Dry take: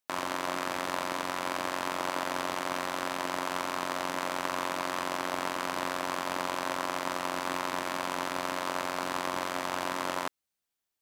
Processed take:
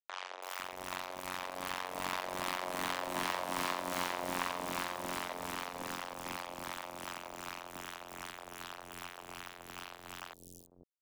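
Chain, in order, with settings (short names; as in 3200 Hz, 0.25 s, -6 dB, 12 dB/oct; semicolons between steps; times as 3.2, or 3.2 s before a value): Doppler pass-by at 3.44, 6 m/s, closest 8.5 m; dynamic EQ 1400 Hz, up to -4 dB, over -47 dBFS, Q 3.1; bit-crush 6-bit; harmonic tremolo 2.6 Hz, depth 70%, crossover 760 Hz; three bands offset in time mids, highs, lows 0.33/0.5 s, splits 420/5900 Hz; Doppler distortion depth 0.11 ms; gain +2 dB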